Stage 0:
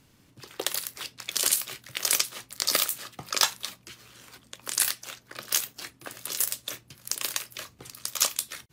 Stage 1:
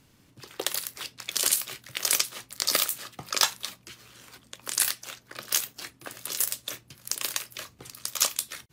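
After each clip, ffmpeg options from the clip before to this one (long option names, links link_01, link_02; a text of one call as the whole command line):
ffmpeg -i in.wav -af anull out.wav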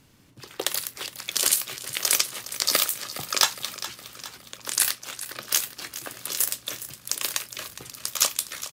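ffmpeg -i in.wav -af "aecho=1:1:413|826|1239|1652|2065:0.2|0.108|0.0582|0.0314|0.017,volume=2.5dB" out.wav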